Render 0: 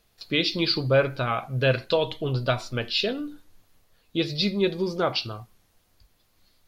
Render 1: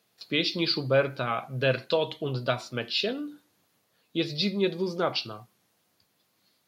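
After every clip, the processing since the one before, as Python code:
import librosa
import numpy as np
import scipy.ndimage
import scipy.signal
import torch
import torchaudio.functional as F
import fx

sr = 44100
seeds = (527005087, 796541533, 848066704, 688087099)

y = scipy.signal.sosfilt(scipy.signal.butter(4, 130.0, 'highpass', fs=sr, output='sos'), x)
y = y * 10.0 ** (-2.5 / 20.0)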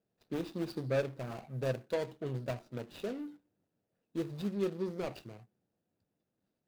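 y = scipy.signal.medfilt(x, 41)
y = y * 10.0 ** (-6.0 / 20.0)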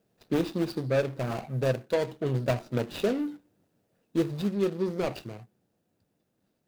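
y = fx.rider(x, sr, range_db=10, speed_s=0.5)
y = y * 10.0 ** (8.5 / 20.0)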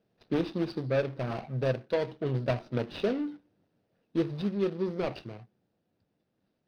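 y = scipy.signal.savgol_filter(x, 15, 4, mode='constant')
y = y * 10.0 ** (-2.0 / 20.0)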